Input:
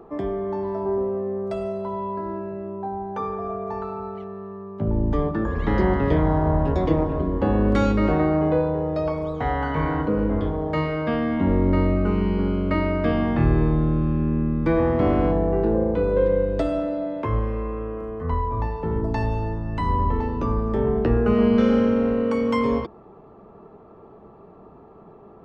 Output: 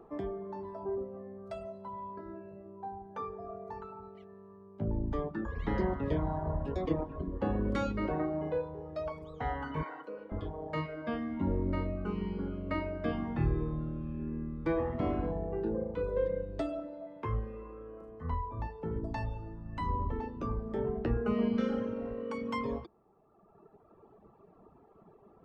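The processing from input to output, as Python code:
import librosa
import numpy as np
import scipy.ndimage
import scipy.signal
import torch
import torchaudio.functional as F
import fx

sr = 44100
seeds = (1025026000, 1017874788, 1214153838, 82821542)

y = fx.dereverb_blind(x, sr, rt60_s=1.7)
y = fx.highpass(y, sr, hz=670.0, slope=12, at=(9.83, 10.32))
y = y * 10.0 ** (-9.0 / 20.0)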